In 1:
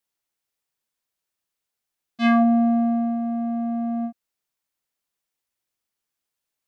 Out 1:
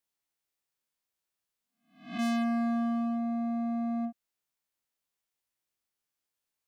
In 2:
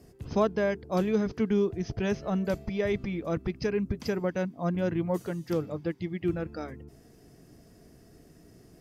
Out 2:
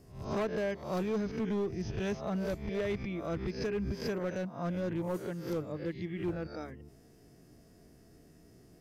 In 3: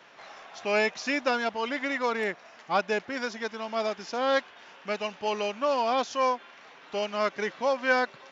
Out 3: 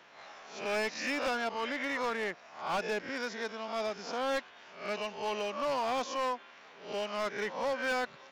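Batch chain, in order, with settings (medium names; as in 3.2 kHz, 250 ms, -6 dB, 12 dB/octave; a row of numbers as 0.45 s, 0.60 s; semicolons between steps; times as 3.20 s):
reverse spectral sustain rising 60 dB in 0.47 s; overload inside the chain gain 22.5 dB; trim -5.5 dB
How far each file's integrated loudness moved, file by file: -9.5 LU, -5.5 LU, -6.0 LU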